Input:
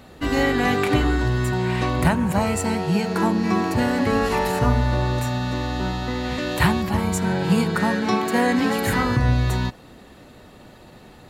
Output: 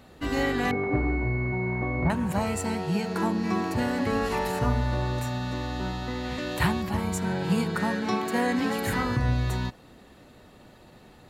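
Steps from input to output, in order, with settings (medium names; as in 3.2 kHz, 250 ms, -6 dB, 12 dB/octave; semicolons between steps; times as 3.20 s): 0.71–2.10 s: class-D stage that switches slowly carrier 2.2 kHz; trim -6 dB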